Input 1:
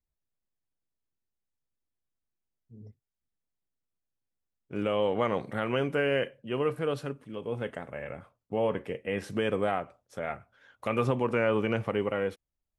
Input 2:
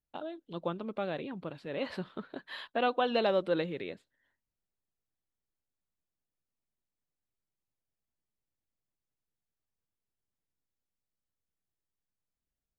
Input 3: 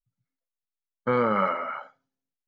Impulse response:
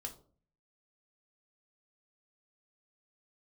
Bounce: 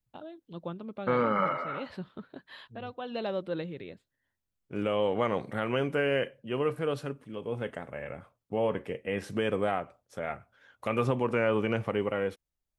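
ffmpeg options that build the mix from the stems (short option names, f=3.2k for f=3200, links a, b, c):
-filter_complex "[0:a]volume=-0.5dB,asplit=2[a][b];[1:a]equalizer=f=89:w=0.55:g=10,volume=-5.5dB[c];[2:a]volume=-3.5dB[d];[b]apad=whole_len=563868[e];[c][e]sidechaincompress=threshold=-55dB:ratio=3:attack=24:release=537[f];[a][f][d]amix=inputs=3:normalize=0"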